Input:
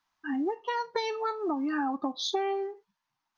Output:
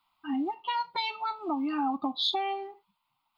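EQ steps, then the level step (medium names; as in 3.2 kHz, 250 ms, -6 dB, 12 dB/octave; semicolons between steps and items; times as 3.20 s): dynamic bell 1.1 kHz, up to -6 dB, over -45 dBFS, Q 1.2; bass shelf 220 Hz -5 dB; static phaser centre 1.7 kHz, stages 6; +7.5 dB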